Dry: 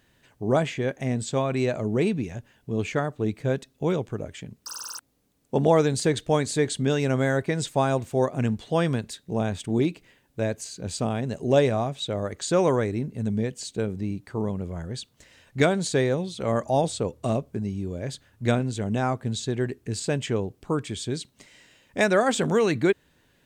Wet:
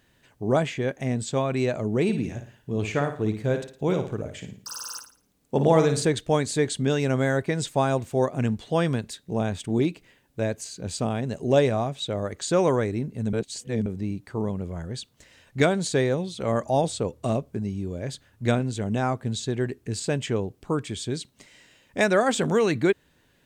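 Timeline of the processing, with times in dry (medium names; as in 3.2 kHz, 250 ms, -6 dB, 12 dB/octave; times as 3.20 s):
2.03–6.05 s: flutter echo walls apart 9.6 m, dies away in 0.42 s
13.33–13.86 s: reverse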